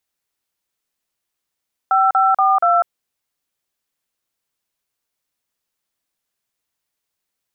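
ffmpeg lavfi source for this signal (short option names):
-f lavfi -i "aevalsrc='0.2*clip(min(mod(t,0.238),0.198-mod(t,0.238))/0.002,0,1)*(eq(floor(t/0.238),0)*(sin(2*PI*770*mod(t,0.238))+sin(2*PI*1336*mod(t,0.238)))+eq(floor(t/0.238),1)*(sin(2*PI*770*mod(t,0.238))+sin(2*PI*1336*mod(t,0.238)))+eq(floor(t/0.238),2)*(sin(2*PI*770*mod(t,0.238))+sin(2*PI*1209*mod(t,0.238)))+eq(floor(t/0.238),3)*(sin(2*PI*697*mod(t,0.238))+sin(2*PI*1336*mod(t,0.238))))':d=0.952:s=44100"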